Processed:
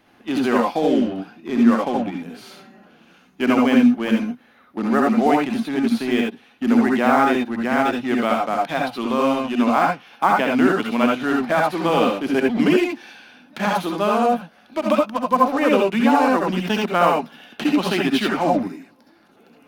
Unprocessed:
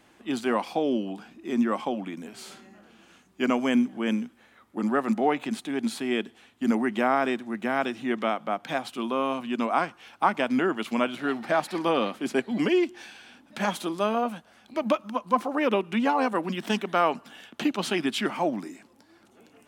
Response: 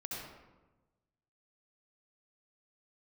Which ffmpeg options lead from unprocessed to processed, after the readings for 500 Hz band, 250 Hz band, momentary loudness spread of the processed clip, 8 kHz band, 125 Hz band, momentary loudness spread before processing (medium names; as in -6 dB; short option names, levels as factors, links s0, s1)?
+7.0 dB, +8.5 dB, 9 LU, +3.5 dB, +8.5 dB, 11 LU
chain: -filter_complex "[0:a]equalizer=f=7700:t=o:w=0.44:g=-14.5,asplit=2[s0][s1];[s1]acrusher=bits=4:mix=0:aa=0.5,volume=0.501[s2];[s0][s2]amix=inputs=2:normalize=0[s3];[1:a]atrim=start_sample=2205,atrim=end_sample=3969[s4];[s3][s4]afir=irnorm=-1:irlink=0,volume=2.11"